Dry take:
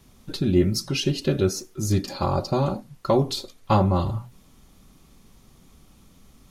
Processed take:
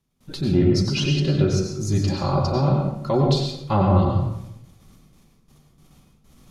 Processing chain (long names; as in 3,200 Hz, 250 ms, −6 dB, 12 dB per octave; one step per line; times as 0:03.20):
noise gate with hold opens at −42 dBFS
parametric band 150 Hz +7 dB 0.27 octaves
treble cut that deepens with the level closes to 2,900 Hz, closed at −15 dBFS
transient designer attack −5 dB, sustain +3 dB
on a send: convolution reverb RT60 0.75 s, pre-delay 88 ms, DRR 1.5 dB